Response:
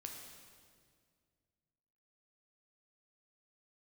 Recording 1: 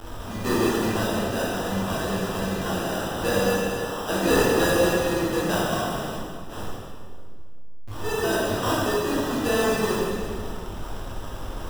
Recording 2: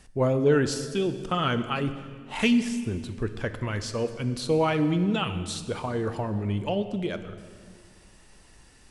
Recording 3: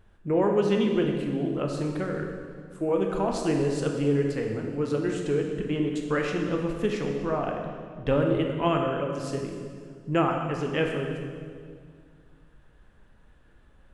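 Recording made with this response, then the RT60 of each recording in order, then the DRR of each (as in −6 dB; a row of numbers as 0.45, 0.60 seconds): 3; 2.0, 2.0, 2.0 seconds; −8.0, 10.0, 1.5 decibels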